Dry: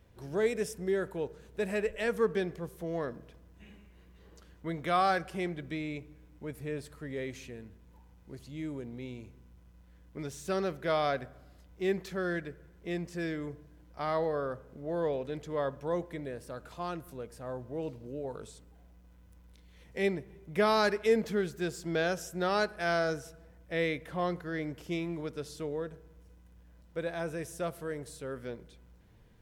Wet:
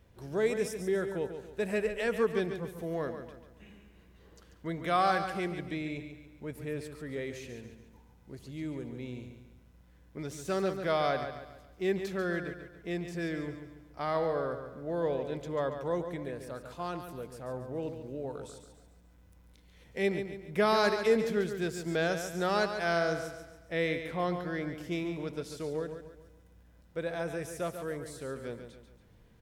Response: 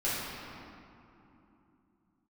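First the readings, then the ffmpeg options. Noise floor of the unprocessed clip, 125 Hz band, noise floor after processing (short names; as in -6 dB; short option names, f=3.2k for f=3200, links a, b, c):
-58 dBFS, +1.0 dB, -60 dBFS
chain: -af "aecho=1:1:141|282|423|564|705:0.376|0.158|0.0663|0.0278|0.0117"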